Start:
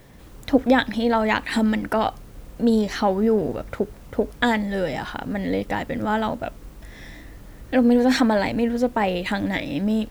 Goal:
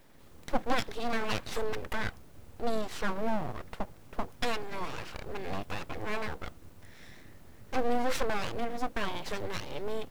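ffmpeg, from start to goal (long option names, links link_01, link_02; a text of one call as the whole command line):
ffmpeg -i in.wav -af "aeval=exprs='abs(val(0))':channel_layout=same,volume=-8.5dB" out.wav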